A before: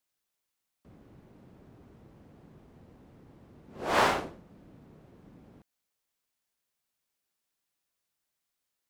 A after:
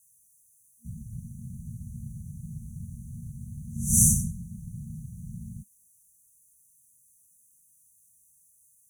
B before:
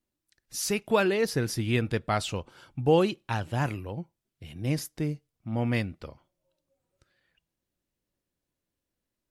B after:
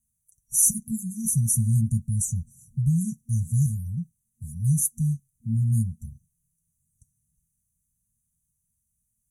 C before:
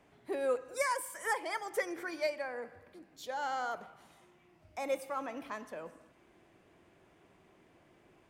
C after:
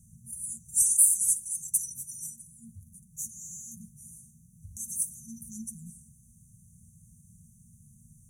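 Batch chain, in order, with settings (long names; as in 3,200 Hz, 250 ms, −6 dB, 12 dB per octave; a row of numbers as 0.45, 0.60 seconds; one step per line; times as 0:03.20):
pitch vibrato 9.1 Hz 14 cents
parametric band 10,000 Hz +12.5 dB 0.51 octaves
brick-wall band-stop 230–5,800 Hz
notch comb filter 200 Hz
normalise the peak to −6 dBFS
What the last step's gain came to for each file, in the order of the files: +19.0, +8.5, +16.5 decibels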